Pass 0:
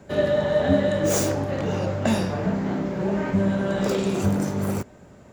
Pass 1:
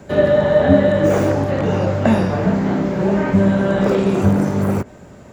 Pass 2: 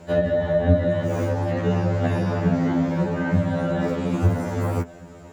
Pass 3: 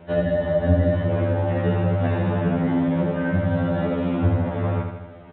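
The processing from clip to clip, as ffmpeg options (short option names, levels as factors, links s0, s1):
-filter_complex "[0:a]acrossover=split=2500[s0][s1];[s1]acompressor=threshold=0.00398:ratio=4:attack=1:release=60[s2];[s0][s2]amix=inputs=2:normalize=0,volume=2.37"
-filter_complex "[0:a]acrossover=split=240[s0][s1];[s1]acompressor=threshold=0.0891:ratio=6[s2];[s0][s2]amix=inputs=2:normalize=0,afftfilt=real='re*2*eq(mod(b,4),0)':imag='im*2*eq(mod(b,4),0)':win_size=2048:overlap=0.75"
-af "aecho=1:1:80|160|240|320|400|480|560:0.531|0.281|0.149|0.079|0.0419|0.0222|0.0118,aresample=8000,aresample=44100,volume=0.841"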